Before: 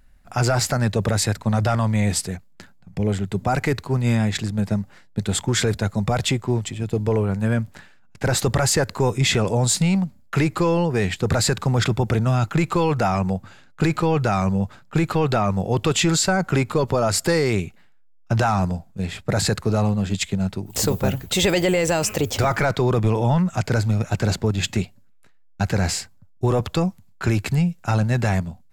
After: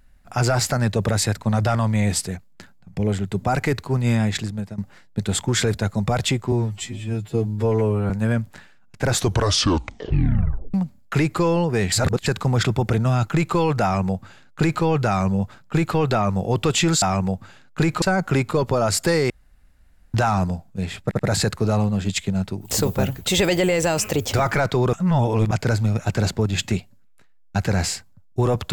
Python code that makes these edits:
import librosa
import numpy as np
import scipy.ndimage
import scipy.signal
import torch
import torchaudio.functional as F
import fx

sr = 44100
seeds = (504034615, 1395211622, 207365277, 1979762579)

y = fx.edit(x, sr, fx.fade_out_to(start_s=4.37, length_s=0.41, floor_db=-17.5),
    fx.stretch_span(start_s=6.52, length_s=0.79, factor=2.0),
    fx.tape_stop(start_s=8.28, length_s=1.67),
    fx.reverse_span(start_s=11.13, length_s=0.34),
    fx.duplicate(start_s=13.04, length_s=1.0, to_s=16.23),
    fx.room_tone_fill(start_s=17.51, length_s=0.84),
    fx.stutter(start_s=19.24, slice_s=0.08, count=3),
    fx.reverse_span(start_s=22.98, length_s=0.58), tone=tone)